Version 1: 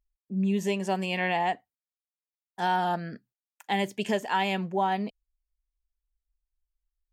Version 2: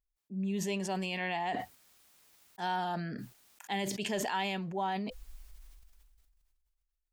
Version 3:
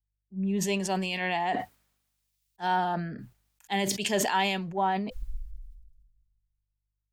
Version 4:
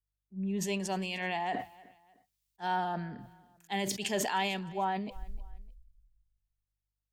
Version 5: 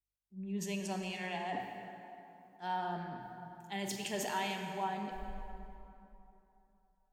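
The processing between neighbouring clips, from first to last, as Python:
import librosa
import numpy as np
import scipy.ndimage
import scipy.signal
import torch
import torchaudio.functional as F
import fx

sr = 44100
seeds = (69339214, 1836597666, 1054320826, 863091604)

y1 = fx.notch(x, sr, hz=510.0, q=12.0)
y1 = fx.dynamic_eq(y1, sr, hz=4300.0, q=1.4, threshold_db=-49.0, ratio=4.0, max_db=5)
y1 = fx.sustainer(y1, sr, db_per_s=25.0)
y1 = y1 * librosa.db_to_amplitude(-8.0)
y2 = fx.add_hum(y1, sr, base_hz=50, snr_db=33)
y2 = fx.band_widen(y2, sr, depth_pct=100)
y2 = y2 * librosa.db_to_amplitude(5.5)
y3 = fx.echo_feedback(y2, sr, ms=305, feedback_pct=35, wet_db=-22.0)
y3 = y3 * librosa.db_to_amplitude(-5.0)
y4 = fx.rev_plate(y3, sr, seeds[0], rt60_s=3.1, hf_ratio=0.6, predelay_ms=0, drr_db=3.0)
y4 = y4 * librosa.db_to_amplitude(-6.5)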